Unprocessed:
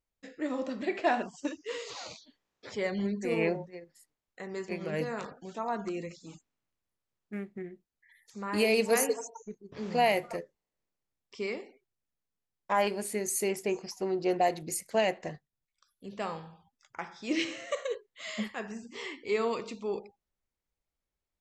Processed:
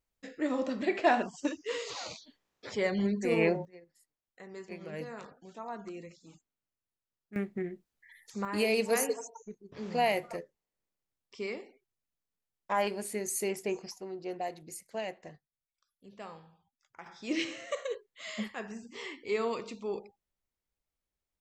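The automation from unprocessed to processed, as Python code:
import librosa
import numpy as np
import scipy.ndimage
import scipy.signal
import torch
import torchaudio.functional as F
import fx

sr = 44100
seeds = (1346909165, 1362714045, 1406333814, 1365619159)

y = fx.gain(x, sr, db=fx.steps((0.0, 2.0), (3.65, -7.5), (7.36, 5.0), (8.45, -2.5), (13.98, -10.0), (17.06, -2.0)))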